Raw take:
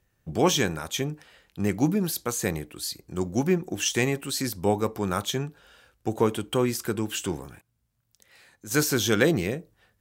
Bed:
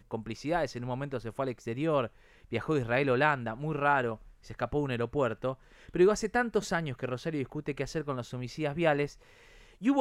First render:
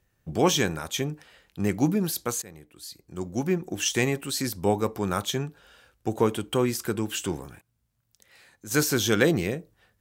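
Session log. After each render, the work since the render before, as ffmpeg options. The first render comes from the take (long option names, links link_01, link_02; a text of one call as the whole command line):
ffmpeg -i in.wav -filter_complex "[0:a]asplit=2[link_01][link_02];[link_01]atrim=end=2.42,asetpts=PTS-STARTPTS,afade=type=out:start_time=2.416:duration=0.004:curve=hsin:silence=0.0794328[link_03];[link_02]atrim=start=2.42,asetpts=PTS-STARTPTS,afade=type=in:duration=1.46:silence=0.0794328[link_04];[link_03][link_04]concat=n=2:v=0:a=1" out.wav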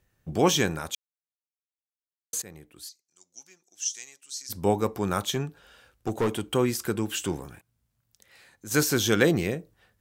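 ffmpeg -i in.wav -filter_complex "[0:a]asplit=3[link_01][link_02][link_03];[link_01]afade=type=out:start_time=2.88:duration=0.02[link_04];[link_02]bandpass=frequency=6100:width_type=q:width=3.5,afade=type=in:start_time=2.88:duration=0.02,afade=type=out:start_time=4.49:duration=0.02[link_05];[link_03]afade=type=in:start_time=4.49:duration=0.02[link_06];[link_04][link_05][link_06]amix=inputs=3:normalize=0,asettb=1/sr,asplit=3[link_07][link_08][link_09];[link_07]atrim=end=5.314[link_10];[link_08]atrim=start=5.31:end=6.44,asetpts=PTS-STARTPTS,afade=type=in:duration=0.004:curve=qsin,afade=type=out:start_time=1.126:duration=0.004:curve=qsin,volume=20dB,asoftclip=hard,volume=-20dB[link_11];[link_09]atrim=start=6.436[link_12];[link_10][link_11]acrossfade=duration=0.004:curve1=hsin:curve2=qsin[link_13];[link_13][link_12]acrossfade=duration=0.004:curve1=qsin:curve2=hsin,asplit=3[link_14][link_15][link_16];[link_14]atrim=end=0.95,asetpts=PTS-STARTPTS,afade=type=out:start_time=0.946:duration=0.004:curve=hsin[link_17];[link_15]atrim=start=0.95:end=2.33,asetpts=PTS-STARTPTS,volume=0[link_18];[link_16]atrim=start=2.33,asetpts=PTS-STARTPTS,afade=type=in:duration=0.004:curve=hsin[link_19];[link_17][link_18][link_19]concat=n=3:v=0:a=1" out.wav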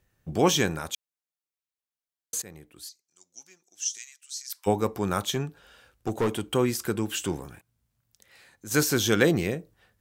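ffmpeg -i in.wav -filter_complex "[0:a]asplit=3[link_01][link_02][link_03];[link_01]afade=type=out:start_time=3.97:duration=0.02[link_04];[link_02]highpass=frequency=1400:width=0.5412,highpass=frequency=1400:width=1.3066,afade=type=in:start_time=3.97:duration=0.02,afade=type=out:start_time=4.66:duration=0.02[link_05];[link_03]afade=type=in:start_time=4.66:duration=0.02[link_06];[link_04][link_05][link_06]amix=inputs=3:normalize=0" out.wav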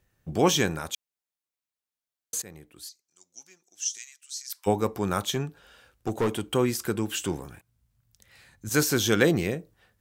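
ffmpeg -i in.wav -filter_complex "[0:a]asettb=1/sr,asplit=3[link_01][link_02][link_03];[link_01]atrim=end=7.464[link_04];[link_02]atrim=start=7.46:end=8.69,asetpts=PTS-STARTPTS,afade=type=in:duration=0.004:curve=qsin,afade=type=out:start_time=1.226:duration=0.004:curve=qsin,asubboost=boost=10.5:cutoff=180[link_05];[link_03]atrim=start=8.686[link_06];[link_04][link_05]acrossfade=duration=0.004:curve1=hsin:curve2=qsin[link_07];[link_07][link_06]acrossfade=duration=0.004:curve1=qsin:curve2=hsin" out.wav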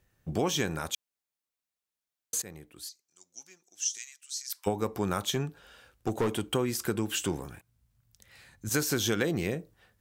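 ffmpeg -i in.wav -af "acompressor=threshold=-24dB:ratio=10" out.wav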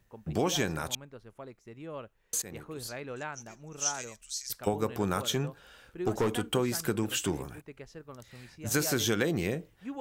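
ffmpeg -i in.wav -i bed.wav -filter_complex "[1:a]volume=-13dB[link_01];[0:a][link_01]amix=inputs=2:normalize=0" out.wav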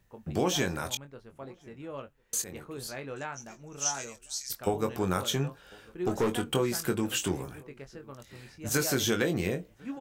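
ffmpeg -i in.wav -filter_complex "[0:a]asplit=2[link_01][link_02];[link_02]adelay=22,volume=-7.5dB[link_03];[link_01][link_03]amix=inputs=2:normalize=0,asplit=2[link_04][link_05];[link_05]adelay=1050,volume=-26dB,highshelf=frequency=4000:gain=-23.6[link_06];[link_04][link_06]amix=inputs=2:normalize=0" out.wav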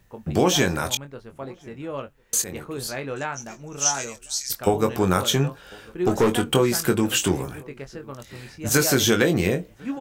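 ffmpeg -i in.wav -af "volume=8.5dB" out.wav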